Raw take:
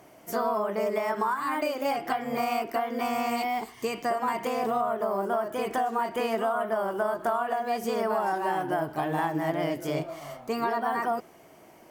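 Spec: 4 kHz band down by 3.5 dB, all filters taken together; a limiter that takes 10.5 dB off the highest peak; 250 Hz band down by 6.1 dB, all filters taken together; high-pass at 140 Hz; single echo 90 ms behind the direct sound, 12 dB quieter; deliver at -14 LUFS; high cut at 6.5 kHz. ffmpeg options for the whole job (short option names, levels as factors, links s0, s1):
-af "highpass=140,lowpass=6500,equalizer=f=250:t=o:g=-7,equalizer=f=4000:t=o:g=-4.5,alimiter=level_in=1.26:limit=0.0631:level=0:latency=1,volume=0.794,aecho=1:1:90:0.251,volume=10.6"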